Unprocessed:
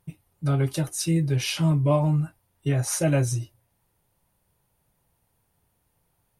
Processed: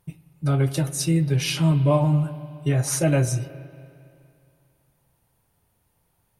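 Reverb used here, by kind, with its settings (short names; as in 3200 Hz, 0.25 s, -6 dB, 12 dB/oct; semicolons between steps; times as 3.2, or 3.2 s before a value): spring tank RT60 2.5 s, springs 37/46 ms, chirp 30 ms, DRR 13 dB; gain +2 dB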